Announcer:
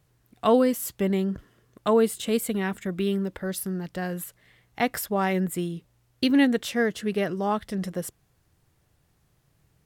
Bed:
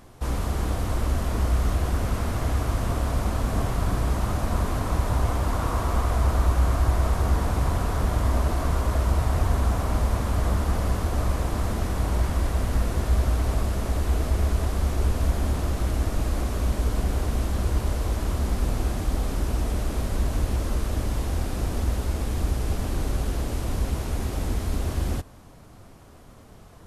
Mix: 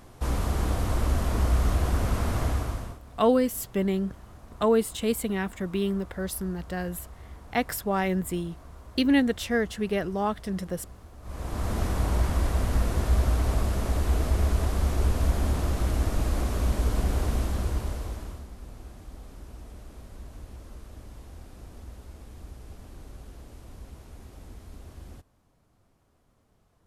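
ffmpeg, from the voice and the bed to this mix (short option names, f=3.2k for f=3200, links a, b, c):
-filter_complex "[0:a]adelay=2750,volume=-1.5dB[a];[1:a]volume=21dB,afade=t=out:st=2.41:d=0.58:silence=0.0794328,afade=t=in:st=11.22:d=0.58:silence=0.0841395,afade=t=out:st=17.3:d=1.17:silence=0.133352[b];[a][b]amix=inputs=2:normalize=0"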